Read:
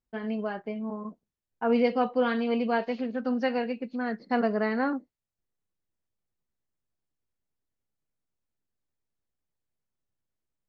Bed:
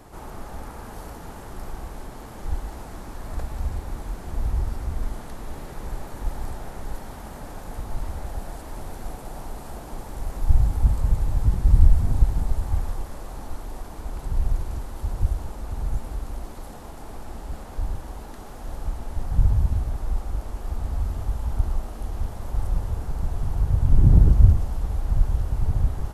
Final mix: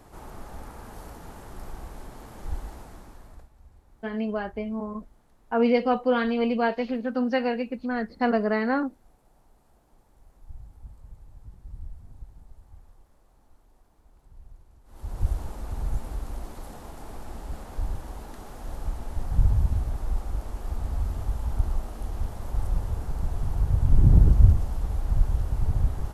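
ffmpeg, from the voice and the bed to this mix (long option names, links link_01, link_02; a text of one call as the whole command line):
ffmpeg -i stem1.wav -i stem2.wav -filter_complex "[0:a]adelay=3900,volume=2.5dB[link_01];[1:a]volume=19dB,afade=type=out:start_time=2.65:duration=0.85:silence=0.0891251,afade=type=in:start_time=14.84:duration=0.46:silence=0.0668344[link_02];[link_01][link_02]amix=inputs=2:normalize=0" out.wav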